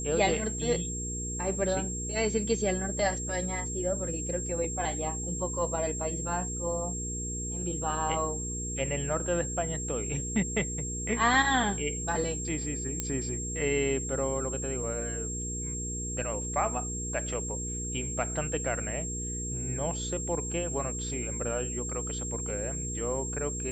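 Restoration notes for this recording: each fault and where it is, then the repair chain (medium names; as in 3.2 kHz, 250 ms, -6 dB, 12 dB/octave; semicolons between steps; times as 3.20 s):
hum 60 Hz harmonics 8 -37 dBFS
whine 7.5 kHz -35 dBFS
13.00 s: pop -15 dBFS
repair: de-click; de-hum 60 Hz, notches 8; band-stop 7.5 kHz, Q 30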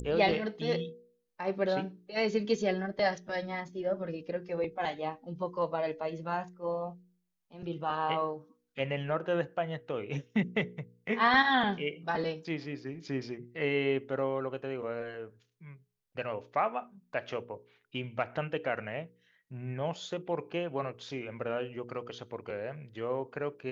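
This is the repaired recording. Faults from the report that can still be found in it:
nothing left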